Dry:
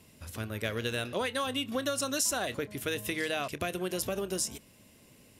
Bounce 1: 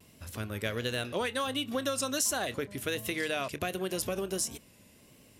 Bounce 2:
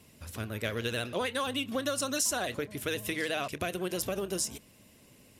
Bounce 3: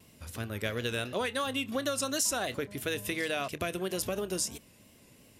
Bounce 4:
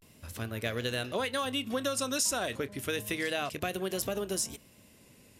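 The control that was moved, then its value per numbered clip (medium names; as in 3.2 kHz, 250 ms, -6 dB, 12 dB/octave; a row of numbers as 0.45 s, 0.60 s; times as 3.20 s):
vibrato, rate: 1.4 Hz, 16 Hz, 2.9 Hz, 0.32 Hz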